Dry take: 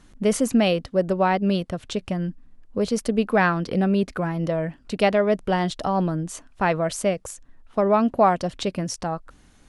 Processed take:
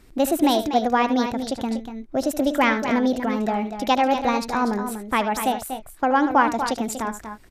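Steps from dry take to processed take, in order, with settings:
change of speed 1.29×
multi-tap delay 75/241/264 ms −12.5/−9/−17.5 dB

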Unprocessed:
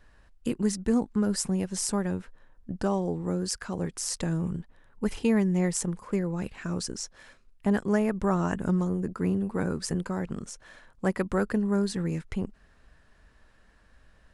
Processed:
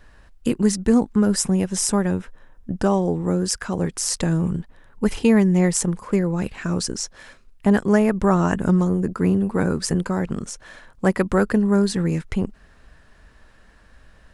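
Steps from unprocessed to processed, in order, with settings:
0:01.12–0:03.81: notch filter 4,400 Hz, Q 9.2
level +8 dB

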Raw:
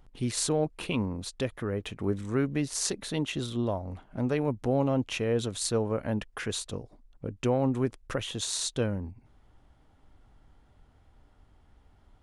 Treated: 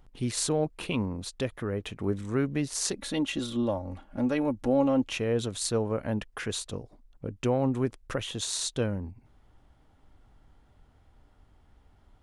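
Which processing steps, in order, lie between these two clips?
0:02.96–0:05.11: comb filter 3.6 ms, depth 60%

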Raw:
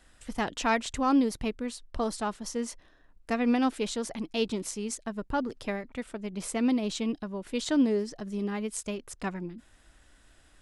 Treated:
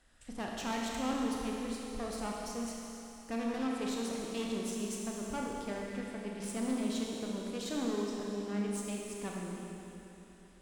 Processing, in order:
tube saturation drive 29 dB, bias 0.55
four-comb reverb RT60 3.3 s, combs from 27 ms, DRR −2 dB
level −5.5 dB

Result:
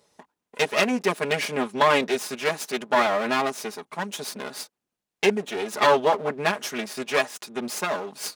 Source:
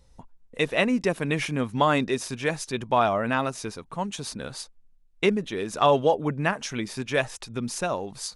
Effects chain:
lower of the sound and its delayed copy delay 4.8 ms
high-pass filter 300 Hz 12 dB per octave
level +3.5 dB

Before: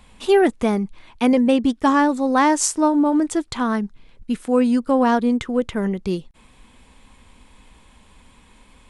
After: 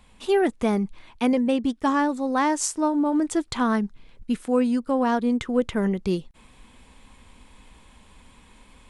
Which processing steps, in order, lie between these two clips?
speech leveller within 3 dB 0.5 s
level −4 dB

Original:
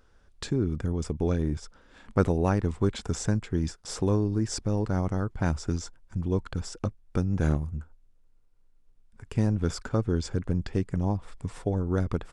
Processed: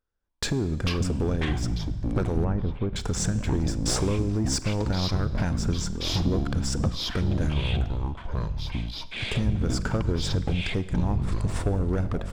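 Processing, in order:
noise gate −45 dBFS, range −24 dB
downward compressor, threshold −33 dBFS, peak gain reduction 16 dB
leveller curve on the samples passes 2
delay with pitch and tempo change per echo 229 ms, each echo −7 semitones, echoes 2
0:02.44–0:02.96: head-to-tape spacing loss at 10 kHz 42 dB
four-comb reverb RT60 1.3 s, combs from 33 ms, DRR 15 dB
level +4.5 dB

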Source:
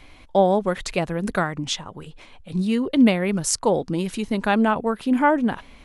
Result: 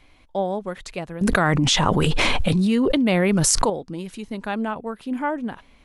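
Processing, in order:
0:01.21–0:03.70: envelope flattener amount 100%
level −7 dB

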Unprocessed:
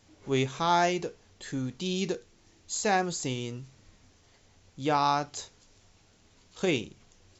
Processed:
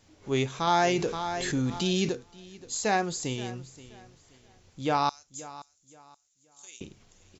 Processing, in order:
0:05.09–0:06.81: resonant band-pass 7,000 Hz, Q 4.3
repeating echo 526 ms, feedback 28%, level −17.5 dB
0:00.67–0:02.09: envelope flattener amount 50%

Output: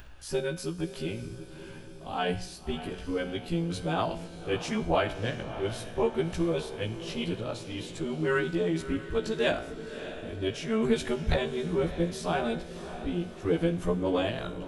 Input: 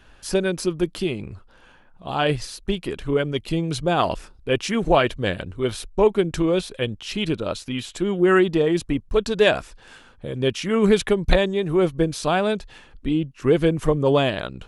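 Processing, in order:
every overlapping window played backwards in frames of 36 ms
low-shelf EQ 99 Hz +6 dB
upward compression, threshold −35 dBFS
tuned comb filter 60 Hz, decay 0.71 s, harmonics all, mix 60%
feedback delay with all-pass diffusion 619 ms, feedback 56%, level −12 dB

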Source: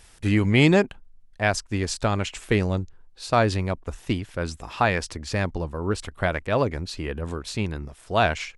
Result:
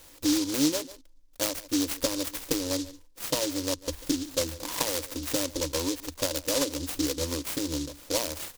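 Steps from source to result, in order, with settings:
low shelf with overshoot 240 Hz −8.5 dB, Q 3
single-tap delay 142 ms −22.5 dB
downward compressor 5 to 1, threshold −29 dBFS, peak gain reduction 16 dB
EQ curve with evenly spaced ripples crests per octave 1.1, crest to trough 18 dB
short delay modulated by noise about 5,000 Hz, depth 0.21 ms

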